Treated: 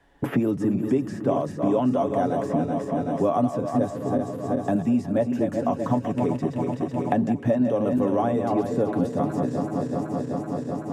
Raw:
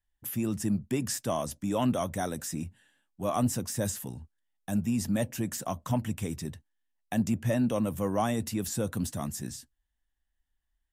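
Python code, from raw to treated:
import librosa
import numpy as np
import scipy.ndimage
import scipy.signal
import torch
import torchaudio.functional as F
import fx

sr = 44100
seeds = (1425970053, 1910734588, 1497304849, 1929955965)

y = fx.reverse_delay_fb(x, sr, ms=190, feedback_pct=71, wet_db=-7)
y = fx.bandpass_q(y, sr, hz=430.0, q=0.98)
y = y + 0.45 * np.pad(y, (int(7.1 * sr / 1000.0), 0))[:len(y)]
y = fx.band_squash(y, sr, depth_pct=100)
y = F.gain(torch.from_numpy(y), 9.0).numpy()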